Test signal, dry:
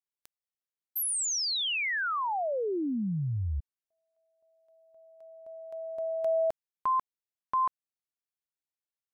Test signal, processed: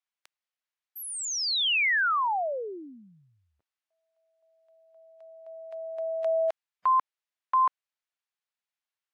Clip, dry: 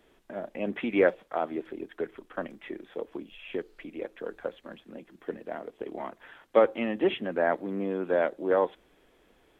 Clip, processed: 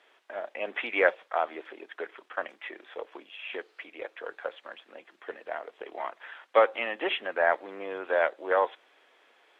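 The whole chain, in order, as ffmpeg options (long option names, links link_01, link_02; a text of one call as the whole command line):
ffmpeg -i in.wav -af "highpass=590,lowpass=2600,aemphasis=mode=production:type=riaa,volume=5dB" -ar 44100 -c:a aac -b:a 64k out.aac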